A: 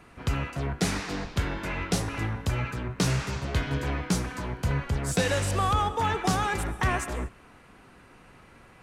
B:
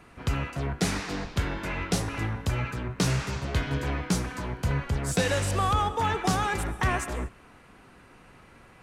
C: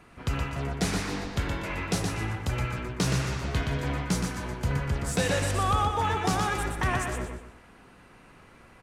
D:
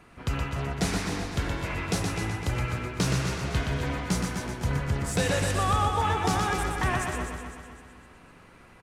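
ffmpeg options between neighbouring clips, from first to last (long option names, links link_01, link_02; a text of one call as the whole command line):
ffmpeg -i in.wav -af anull out.wav
ffmpeg -i in.wav -af "aecho=1:1:121|242|363|484:0.562|0.18|0.0576|0.0184,volume=-1.5dB" out.wav
ffmpeg -i in.wav -af "aecho=1:1:254|508|762|1016|1270:0.355|0.156|0.0687|0.0302|0.0133" out.wav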